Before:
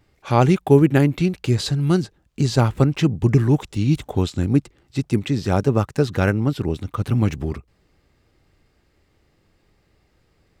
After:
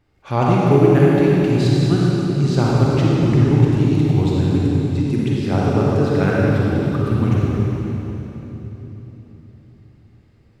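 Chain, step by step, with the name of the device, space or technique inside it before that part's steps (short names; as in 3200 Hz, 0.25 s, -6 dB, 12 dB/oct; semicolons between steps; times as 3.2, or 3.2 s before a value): swimming-pool hall (reverb RT60 3.8 s, pre-delay 38 ms, DRR -5 dB; high shelf 4800 Hz -7.5 dB); gain -3.5 dB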